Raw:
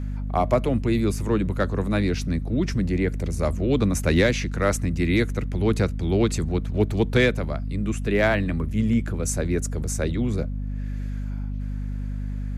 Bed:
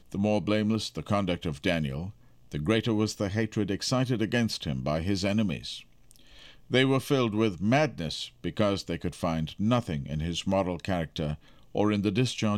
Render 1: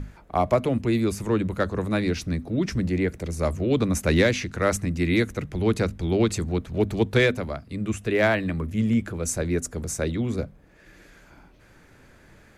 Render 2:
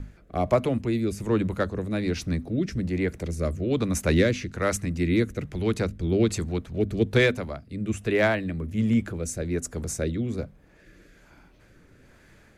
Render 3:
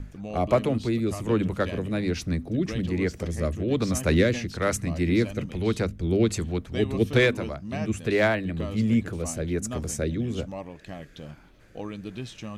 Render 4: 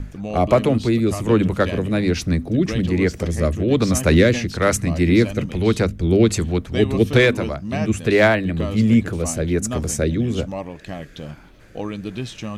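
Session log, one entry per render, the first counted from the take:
mains-hum notches 50/100/150/200/250 Hz
rotating-speaker cabinet horn 1.2 Hz
mix in bed −10.5 dB
level +7.5 dB; brickwall limiter −3 dBFS, peak gain reduction 2.5 dB

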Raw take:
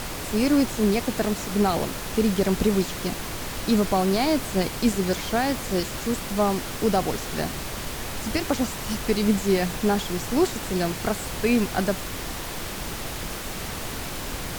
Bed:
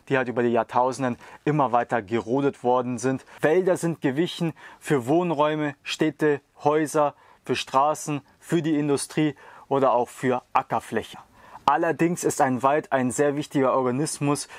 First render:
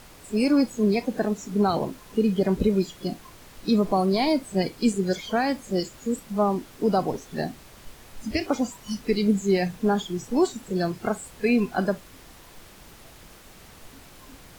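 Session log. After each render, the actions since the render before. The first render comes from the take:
noise reduction from a noise print 16 dB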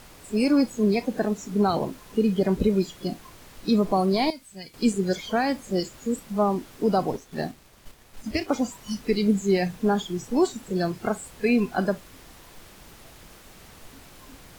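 0:04.30–0:04.74: guitar amp tone stack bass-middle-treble 5-5-5
0:07.16–0:08.49: mu-law and A-law mismatch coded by A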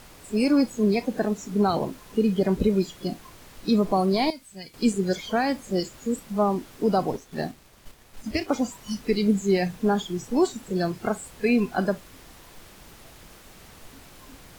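no processing that can be heard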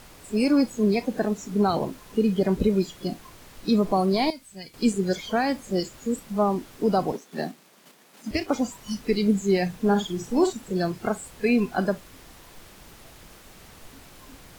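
0:07.12–0:08.31: Butterworth high-pass 160 Hz 48 dB per octave
0:09.84–0:10.53: double-tracking delay 49 ms −8 dB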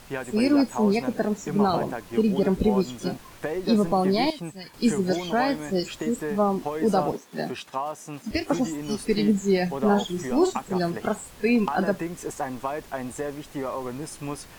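mix in bed −9.5 dB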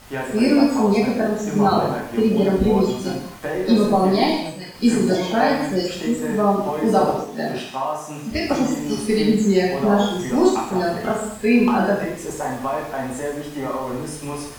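reverb whose tail is shaped and stops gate 270 ms falling, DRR −4 dB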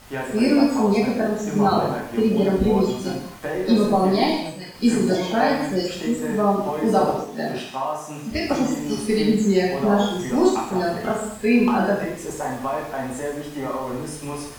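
level −1.5 dB

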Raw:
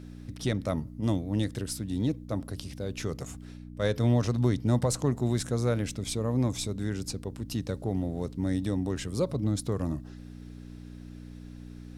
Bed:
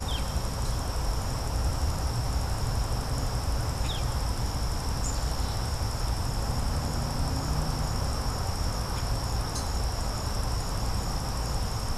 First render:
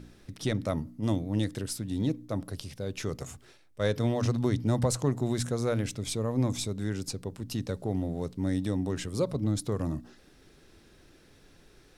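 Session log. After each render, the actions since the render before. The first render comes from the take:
hum removal 60 Hz, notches 5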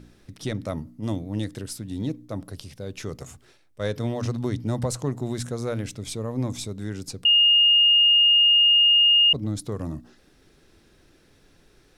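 0:07.25–0:09.33: beep over 2,840 Hz −13.5 dBFS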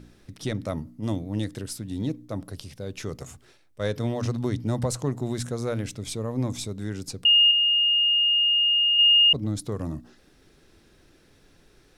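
0:07.51–0:08.99: high-frequency loss of the air 260 metres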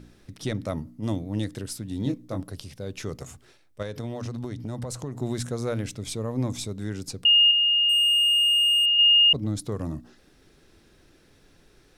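0:02.03–0:02.44: double-tracking delay 22 ms −5 dB
0:03.82–0:05.16: downward compressor, threshold −29 dBFS
0:07.89–0:08.86: leveller curve on the samples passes 1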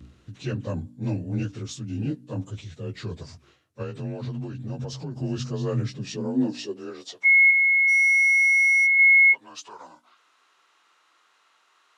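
partials spread apart or drawn together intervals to 89%
high-pass filter sweep 73 Hz → 1,000 Hz, 0:05.50–0:07.48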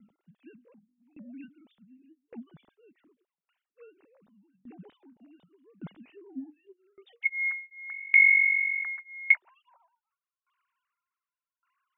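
three sine waves on the formant tracks
tremolo with a ramp in dB decaying 0.86 Hz, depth 28 dB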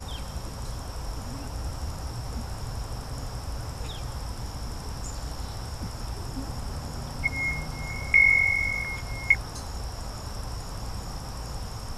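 mix in bed −5.5 dB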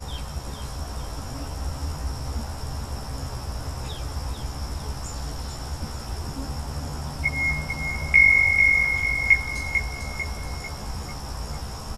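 double-tracking delay 14 ms −2.5 dB
repeating echo 446 ms, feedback 43%, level −7 dB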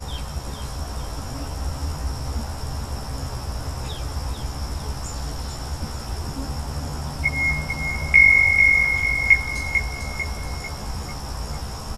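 level +2.5 dB

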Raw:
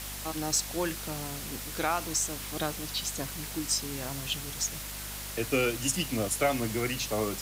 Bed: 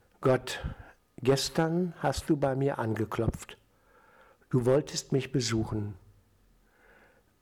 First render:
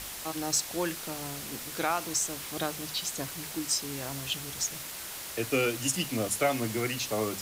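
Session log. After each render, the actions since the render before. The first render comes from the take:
mains-hum notches 50/100/150/200/250 Hz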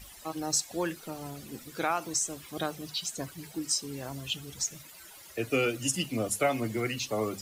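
broadband denoise 15 dB, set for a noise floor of −40 dBFS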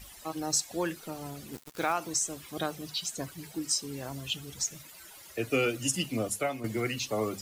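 0:01.53–0:01.93: centre clipping without the shift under −40.5 dBFS
0:06.18–0:06.64: fade out, to −9.5 dB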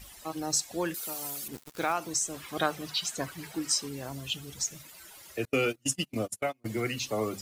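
0:00.94–0:01.48: RIAA equalisation recording
0:02.34–0:03.89: parametric band 1,400 Hz +8 dB 2.5 octaves
0:05.45–0:06.66: noise gate −32 dBFS, range −32 dB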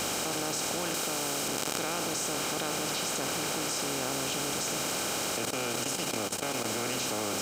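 compressor on every frequency bin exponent 0.2
output level in coarse steps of 16 dB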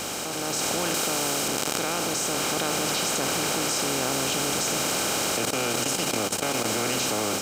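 automatic gain control gain up to 6 dB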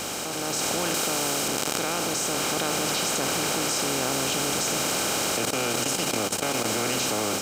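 no processing that can be heard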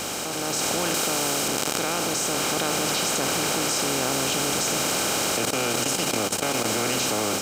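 level +1.5 dB
brickwall limiter −3 dBFS, peak gain reduction 1 dB

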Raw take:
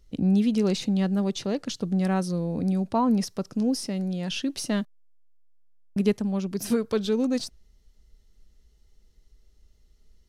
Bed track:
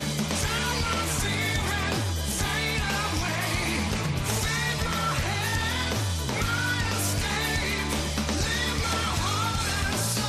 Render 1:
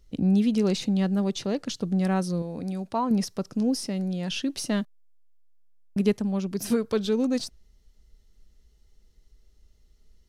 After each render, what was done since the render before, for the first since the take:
0:02.42–0:03.11: low-shelf EQ 440 Hz −8 dB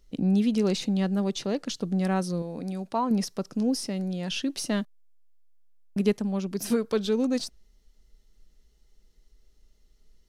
parametric band 82 Hz −13.5 dB 0.9 octaves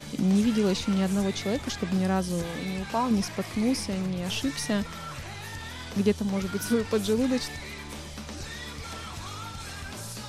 mix in bed track −11.5 dB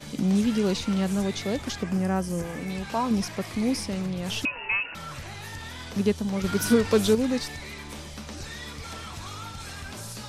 0:01.83–0:02.70: parametric band 3,800 Hz −13 dB 0.55 octaves
0:04.45–0:04.95: voice inversion scrambler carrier 2,800 Hz
0:06.44–0:07.15: clip gain +5 dB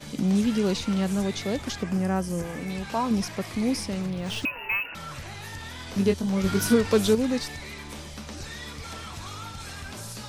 0:04.10–0:04.89: linearly interpolated sample-rate reduction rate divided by 3×
0:05.86–0:06.67: double-tracking delay 21 ms −5 dB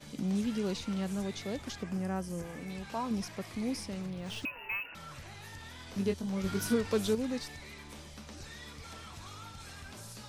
level −9 dB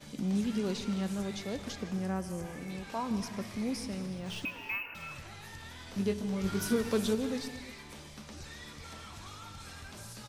single-tap delay 156 ms −17.5 dB
reverb whose tail is shaped and stops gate 390 ms flat, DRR 10.5 dB

